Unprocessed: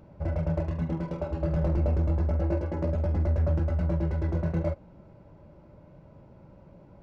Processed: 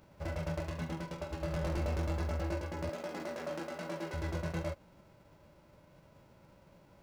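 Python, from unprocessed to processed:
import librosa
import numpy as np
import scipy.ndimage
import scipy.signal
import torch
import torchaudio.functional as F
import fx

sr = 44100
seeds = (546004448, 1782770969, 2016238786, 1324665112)

y = fx.envelope_flatten(x, sr, power=0.6)
y = fx.highpass(y, sr, hz=200.0, slope=24, at=(2.89, 4.14))
y = y * librosa.db_to_amplitude(-9.0)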